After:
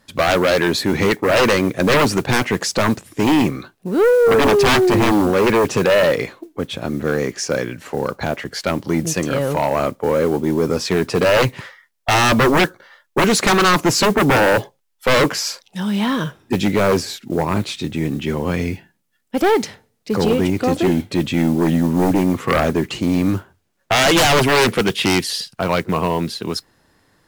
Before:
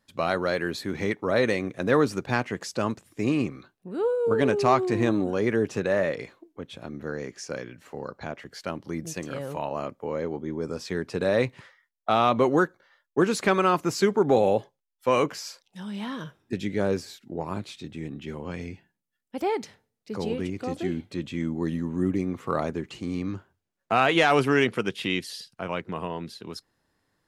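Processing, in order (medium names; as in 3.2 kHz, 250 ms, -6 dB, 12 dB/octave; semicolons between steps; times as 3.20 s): modulation noise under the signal 27 dB; sine folder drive 14 dB, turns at -7 dBFS; trim -3 dB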